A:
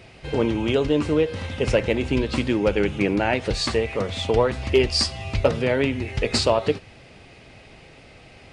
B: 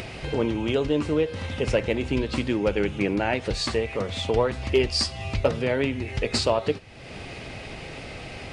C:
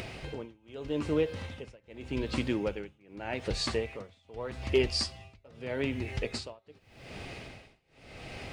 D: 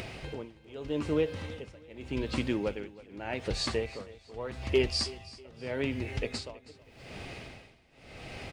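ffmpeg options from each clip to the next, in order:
-af "acompressor=mode=upward:threshold=-22dB:ratio=2.5,volume=-3dB"
-af "acrusher=bits=10:mix=0:aa=0.000001,tremolo=f=0.83:d=0.98,volume=-4.5dB"
-af "aecho=1:1:322|644|966:0.112|0.0404|0.0145"

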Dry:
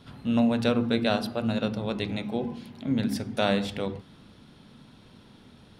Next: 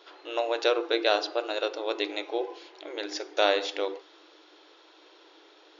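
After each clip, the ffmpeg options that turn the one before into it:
-af "afftfilt=real='re*between(b*sr/4096,300,7100)':imag='im*between(b*sr/4096,300,7100)':win_size=4096:overlap=0.75,adynamicequalizer=threshold=0.00794:dfrequency=4400:dqfactor=0.7:tfrequency=4400:tqfactor=0.7:attack=5:release=100:ratio=0.375:range=2:mode=boostabove:tftype=highshelf,volume=2.5dB"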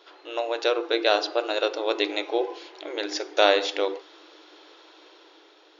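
-af "dynaudnorm=f=240:g=9:m=6dB"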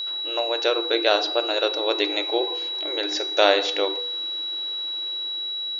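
-af "bandreject=f=243.1:t=h:w=4,bandreject=f=486.2:t=h:w=4,bandreject=f=729.3:t=h:w=4,bandreject=f=972.4:t=h:w=4,bandreject=f=1.2155k:t=h:w=4,bandreject=f=1.4586k:t=h:w=4,bandreject=f=1.7017k:t=h:w=4,bandreject=f=1.9448k:t=h:w=4,bandreject=f=2.1879k:t=h:w=4,bandreject=f=2.431k:t=h:w=4,bandreject=f=2.6741k:t=h:w=4,bandreject=f=2.9172k:t=h:w=4,bandreject=f=3.1603k:t=h:w=4,bandreject=f=3.4034k:t=h:w=4,bandreject=f=3.6465k:t=h:w=4,bandreject=f=3.8896k:t=h:w=4,bandreject=f=4.1327k:t=h:w=4,bandreject=f=4.3758k:t=h:w=4,bandreject=f=4.6189k:t=h:w=4,bandreject=f=4.862k:t=h:w=4,bandreject=f=5.1051k:t=h:w=4,bandreject=f=5.3482k:t=h:w=4,bandreject=f=5.5913k:t=h:w=4,bandreject=f=5.8344k:t=h:w=4,bandreject=f=6.0775k:t=h:w=4,bandreject=f=6.3206k:t=h:w=4,bandreject=f=6.5637k:t=h:w=4,bandreject=f=6.8068k:t=h:w=4,bandreject=f=7.0499k:t=h:w=4,bandreject=f=7.293k:t=h:w=4,bandreject=f=7.5361k:t=h:w=4,bandreject=f=7.7792k:t=h:w=4,bandreject=f=8.0223k:t=h:w=4,aeval=exprs='val(0)+0.0398*sin(2*PI*3900*n/s)':c=same,volume=1.5dB"

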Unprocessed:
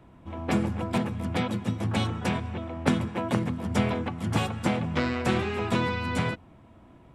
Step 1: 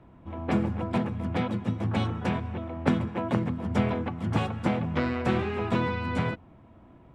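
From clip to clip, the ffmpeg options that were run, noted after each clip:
-af "aemphasis=mode=reproduction:type=75kf"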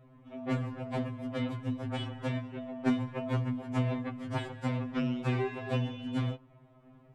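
-af "afftfilt=real='re*2.45*eq(mod(b,6),0)':imag='im*2.45*eq(mod(b,6),0)':win_size=2048:overlap=0.75,volume=-2.5dB"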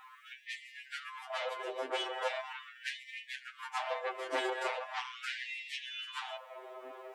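-af "aeval=exprs='0.158*sin(PI/2*3.98*val(0)/0.158)':c=same,alimiter=level_in=2dB:limit=-24dB:level=0:latency=1:release=15,volume=-2dB,afftfilt=real='re*gte(b*sr/1024,300*pow(1800/300,0.5+0.5*sin(2*PI*0.4*pts/sr)))':imag='im*gte(b*sr/1024,300*pow(1800/300,0.5+0.5*sin(2*PI*0.4*pts/sr)))':win_size=1024:overlap=0.75,volume=1dB"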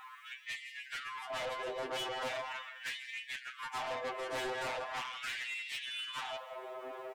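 -af "aecho=1:1:168|336|504:0.119|0.0357|0.0107,asoftclip=type=tanh:threshold=-38.5dB,volume=4dB"

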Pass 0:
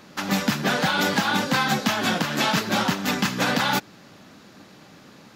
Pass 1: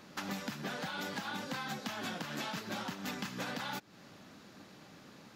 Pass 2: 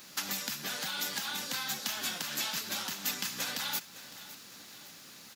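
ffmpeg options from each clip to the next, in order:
-af "acompressor=threshold=-30dB:ratio=6,volume=-7dB"
-af "crystalizer=i=9.5:c=0,acrusher=bits=8:mix=0:aa=0.000001,aecho=1:1:559|1118|1677|2236:0.158|0.0792|0.0396|0.0198,volume=-6dB"

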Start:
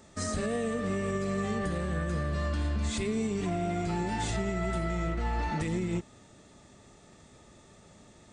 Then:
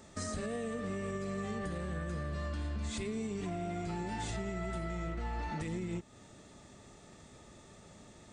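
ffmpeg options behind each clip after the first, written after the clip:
-af "acompressor=threshold=-40dB:ratio=2"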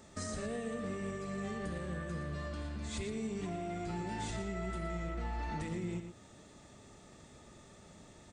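-filter_complex "[0:a]asplit=2[a][b];[b]adelay=116.6,volume=-8dB,highshelf=f=4k:g=-2.62[c];[a][c]amix=inputs=2:normalize=0,volume=-1.5dB"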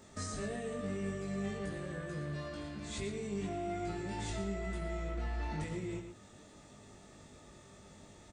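-filter_complex "[0:a]asplit=2[a][b];[b]adelay=20,volume=-3dB[c];[a][c]amix=inputs=2:normalize=0,volume=-1.5dB"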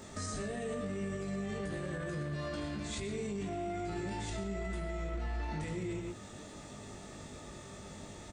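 -af "alimiter=level_in=14dB:limit=-24dB:level=0:latency=1:release=93,volume=-14dB,volume=8dB"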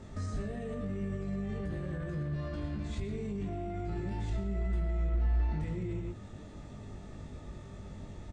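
-af "aemphasis=mode=reproduction:type=bsi,volume=-4dB"

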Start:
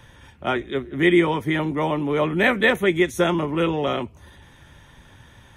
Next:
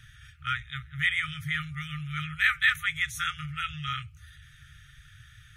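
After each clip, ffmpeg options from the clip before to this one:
-af "afftfilt=real='re*(1-between(b*sr/4096,160,1200))':imag='im*(1-between(b*sr/4096,160,1200))':win_size=4096:overlap=0.75,volume=-2.5dB"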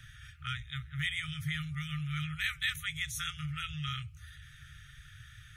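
-filter_complex "[0:a]acrossover=split=350|3000[a][b][c];[b]acompressor=threshold=-45dB:ratio=3[d];[a][d][c]amix=inputs=3:normalize=0"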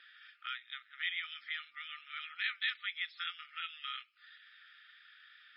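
-af "afftfilt=real='re*between(b*sr/4096,240,5400)':imag='im*between(b*sr/4096,240,5400)':win_size=4096:overlap=0.75,volume=-2dB"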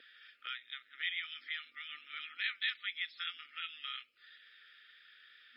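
-af "lowshelf=f=720:t=q:w=3:g=12,volume=1dB"

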